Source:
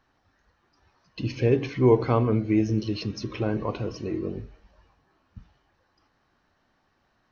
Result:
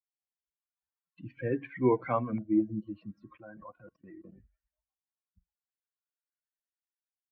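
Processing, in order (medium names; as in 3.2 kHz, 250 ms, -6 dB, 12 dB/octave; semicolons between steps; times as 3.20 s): expander on every frequency bin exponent 2; 3.35–4.32 s: level held to a coarse grid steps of 23 dB; LFO low-pass saw up 0.42 Hz 740–2600 Hz; three-band isolator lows -15 dB, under 160 Hz, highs -13 dB, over 2.8 kHz; comb of notches 430 Hz; trim -1.5 dB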